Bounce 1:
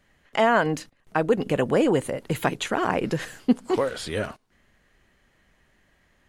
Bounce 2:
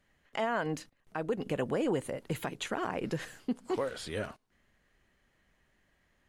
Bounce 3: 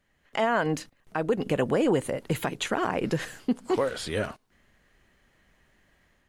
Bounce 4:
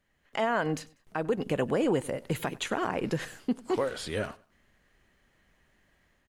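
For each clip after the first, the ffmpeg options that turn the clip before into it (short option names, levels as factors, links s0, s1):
-af "alimiter=limit=0.211:level=0:latency=1:release=153,volume=0.398"
-af "dynaudnorm=f=110:g=5:m=2.24"
-af "aecho=1:1:96|192:0.075|0.0247,volume=0.708"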